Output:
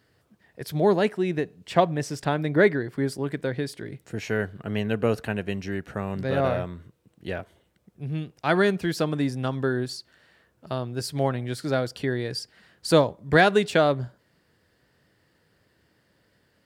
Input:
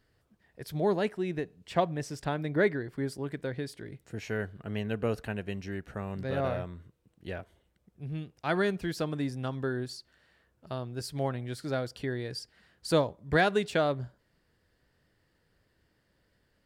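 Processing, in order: high-pass 92 Hz; trim +7 dB

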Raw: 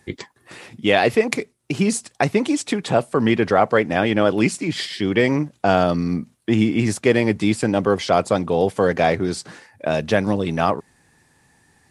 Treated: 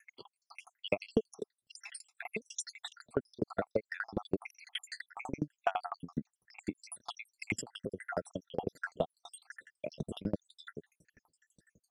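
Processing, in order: random holes in the spectrogram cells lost 80%; compression 6:1, threshold -24 dBFS, peak gain reduction 12 dB; sawtooth tremolo in dB decaying 12 Hz, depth 34 dB; trim +2 dB

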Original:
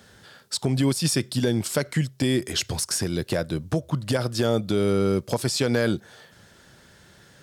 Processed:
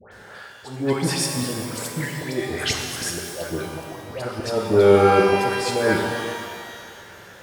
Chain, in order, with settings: high-order bell 920 Hz +9.5 dB 2.9 oct; slow attack 370 ms; phase dispersion highs, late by 118 ms, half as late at 1.4 kHz; pitch-shifted reverb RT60 2 s, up +12 st, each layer -8 dB, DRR 1.5 dB

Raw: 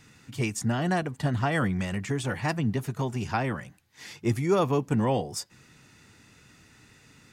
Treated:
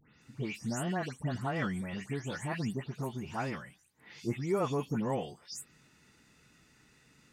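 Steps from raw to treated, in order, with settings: delay that grows with frequency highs late, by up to 217 ms; trim -7 dB

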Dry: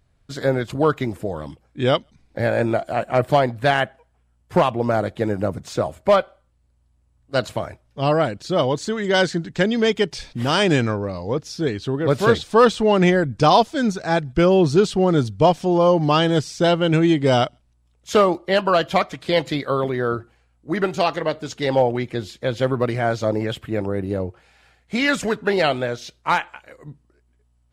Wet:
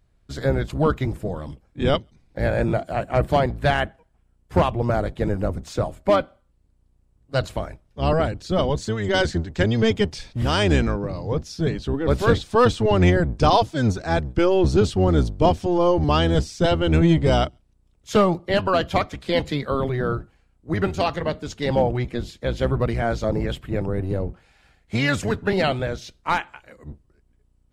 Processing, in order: octave divider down 1 oct, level +2 dB; trim -3 dB

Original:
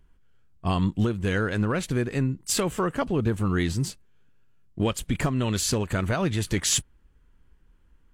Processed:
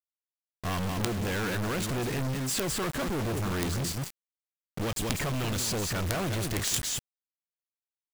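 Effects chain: delay 196 ms -10.5 dB; companded quantiser 2-bit; trim -4.5 dB

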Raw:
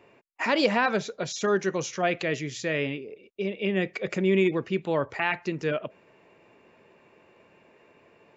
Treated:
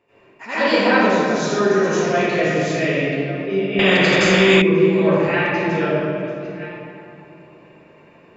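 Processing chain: chunks repeated in reverse 657 ms, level -14 dB; reverberation RT60 2.7 s, pre-delay 80 ms, DRR -17 dB; 3.79–4.62 s: spectrum-flattening compressor 2:1; trim -9 dB

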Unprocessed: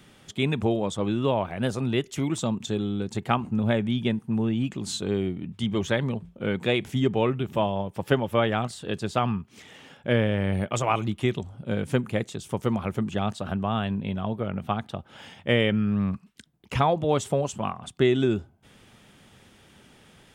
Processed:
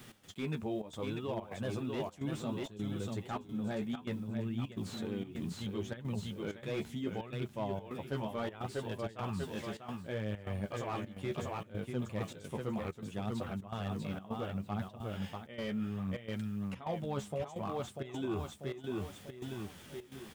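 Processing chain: feedback delay 642 ms, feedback 32%, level -6.5 dB; flange 0.67 Hz, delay 7.9 ms, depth 6.7 ms, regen +27%; word length cut 10-bit, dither none; reverse; compression 5:1, threshold -38 dBFS, peak gain reduction 17 dB; reverse; trance gate "x.xxxxx.xxx" 129 bpm -12 dB; slew-rate limiter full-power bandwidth 14 Hz; trim +3 dB

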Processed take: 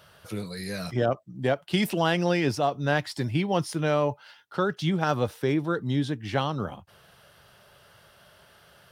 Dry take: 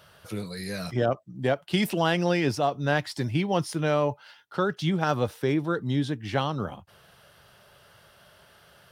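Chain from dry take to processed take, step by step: 3.15–3.55 s: band-stop 6 kHz

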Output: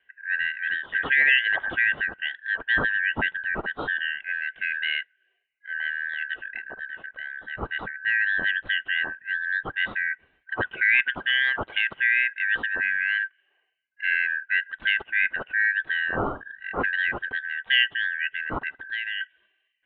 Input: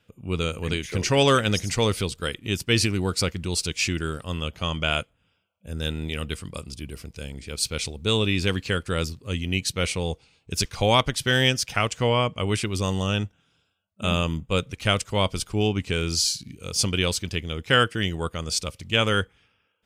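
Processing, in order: four frequency bands reordered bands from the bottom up 4123; steep low-pass 3.1 kHz 72 dB/octave; 18.77–19.21 s: compression 5:1, threshold -28 dBFS, peak gain reduction 9 dB

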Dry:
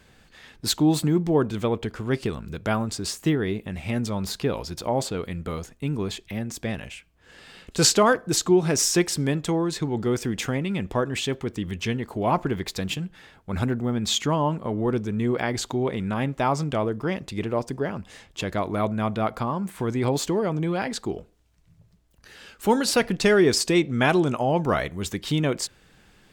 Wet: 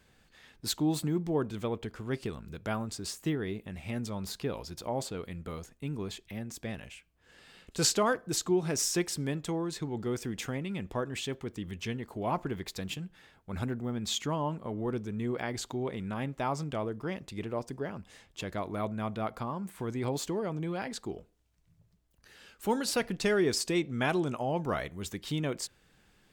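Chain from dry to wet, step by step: treble shelf 10 kHz +4 dB; trim -9 dB

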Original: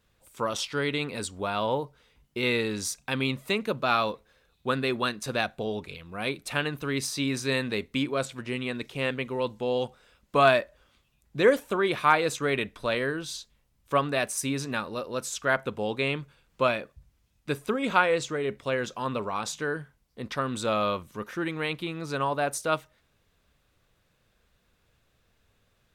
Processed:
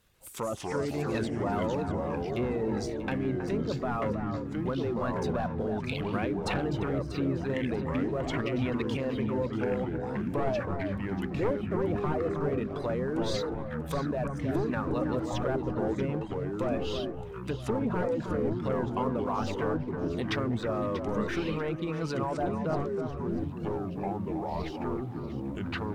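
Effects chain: one-sided wavefolder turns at -19.5 dBFS; reverb removal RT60 0.8 s; low-pass that closes with the level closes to 830 Hz, closed at -27.5 dBFS; treble shelf 9.3 kHz +9.5 dB; in parallel at +3 dB: compressor with a negative ratio -37 dBFS, ratio -1; on the sum: waveshaping leveller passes 1; ever faster or slower copies 138 ms, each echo -4 st, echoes 3; on a send: echo whose repeats swap between lows and highs 319 ms, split 1.8 kHz, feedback 54%, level -7 dB; on the sum: trim -9 dB

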